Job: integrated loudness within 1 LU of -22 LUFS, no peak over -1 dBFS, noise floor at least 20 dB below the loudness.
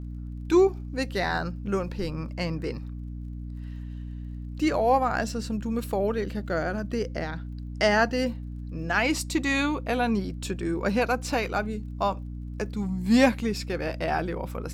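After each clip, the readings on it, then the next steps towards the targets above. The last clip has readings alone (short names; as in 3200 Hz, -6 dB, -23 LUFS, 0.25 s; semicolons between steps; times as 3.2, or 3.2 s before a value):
ticks 30/s; hum 60 Hz; harmonics up to 300 Hz; hum level -33 dBFS; loudness -27.0 LUFS; peak -6.5 dBFS; loudness target -22.0 LUFS
-> de-click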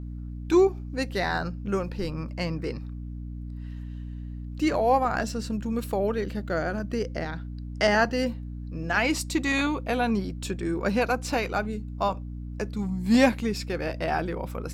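ticks 0.27/s; hum 60 Hz; harmonics up to 300 Hz; hum level -33 dBFS
-> de-hum 60 Hz, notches 5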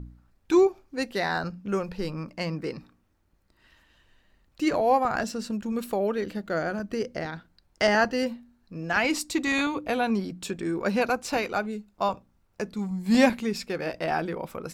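hum none; loudness -27.5 LUFS; peak -7.0 dBFS; loudness target -22.0 LUFS
-> gain +5.5 dB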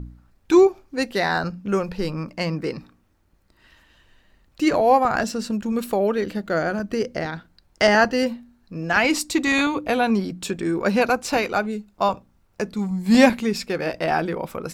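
loudness -22.0 LUFS; peak -1.5 dBFS; noise floor -62 dBFS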